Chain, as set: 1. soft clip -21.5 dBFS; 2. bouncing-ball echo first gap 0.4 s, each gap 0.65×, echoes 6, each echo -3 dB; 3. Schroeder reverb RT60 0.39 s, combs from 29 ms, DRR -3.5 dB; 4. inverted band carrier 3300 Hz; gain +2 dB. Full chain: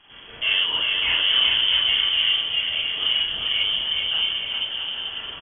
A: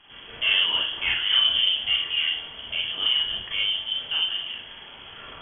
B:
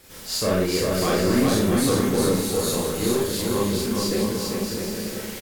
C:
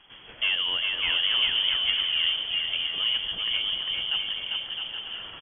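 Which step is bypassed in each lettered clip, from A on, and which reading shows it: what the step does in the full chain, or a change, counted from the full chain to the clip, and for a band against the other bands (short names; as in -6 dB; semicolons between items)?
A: 2, momentary loudness spread change +13 LU; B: 4, momentary loudness spread change -1 LU; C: 3, crest factor change +2.0 dB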